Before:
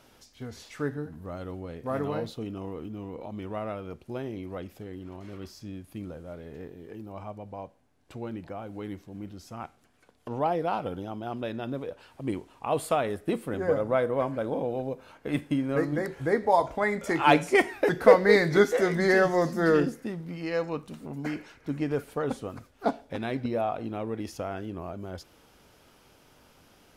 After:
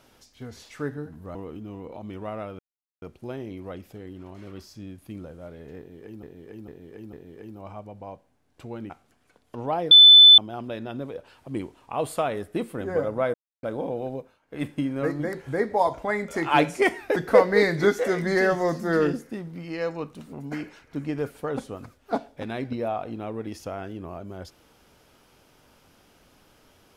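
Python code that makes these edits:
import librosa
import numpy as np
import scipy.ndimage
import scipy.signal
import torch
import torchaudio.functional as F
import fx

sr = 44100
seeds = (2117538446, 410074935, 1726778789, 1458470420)

y = fx.edit(x, sr, fx.cut(start_s=1.35, length_s=1.29),
    fx.insert_silence(at_s=3.88, length_s=0.43),
    fx.repeat(start_s=6.64, length_s=0.45, count=4),
    fx.cut(start_s=8.41, length_s=1.22),
    fx.bleep(start_s=10.64, length_s=0.47, hz=3510.0, db=-7.0),
    fx.silence(start_s=14.07, length_s=0.29),
    fx.fade_down_up(start_s=14.87, length_s=0.52, db=-18.5, fade_s=0.24), tone=tone)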